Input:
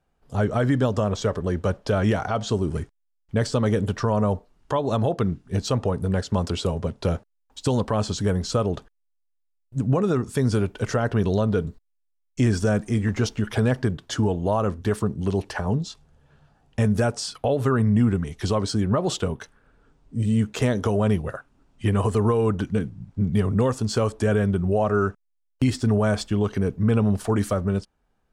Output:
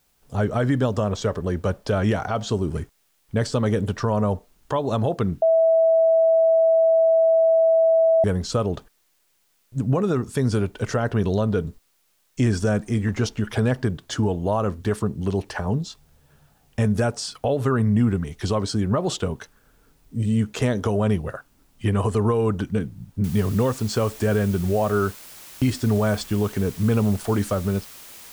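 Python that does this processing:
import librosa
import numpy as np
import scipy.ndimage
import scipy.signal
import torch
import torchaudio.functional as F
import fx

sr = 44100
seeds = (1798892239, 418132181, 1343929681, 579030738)

y = fx.noise_floor_step(x, sr, seeds[0], at_s=23.24, before_db=-67, after_db=-43, tilt_db=0.0)
y = fx.edit(y, sr, fx.bleep(start_s=5.42, length_s=2.82, hz=653.0, db=-13.5), tone=tone)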